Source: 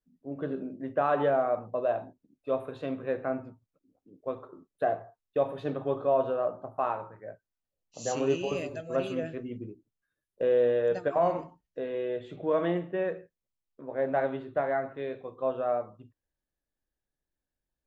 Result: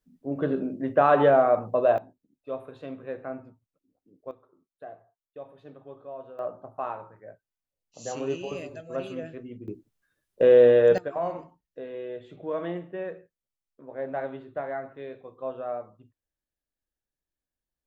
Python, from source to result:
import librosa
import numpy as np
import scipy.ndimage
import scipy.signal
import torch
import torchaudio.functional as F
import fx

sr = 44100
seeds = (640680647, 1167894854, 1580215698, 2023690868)

y = fx.gain(x, sr, db=fx.steps((0.0, 7.0), (1.98, -4.5), (4.31, -15.0), (6.39, -3.0), (9.68, 8.5), (10.98, -4.0)))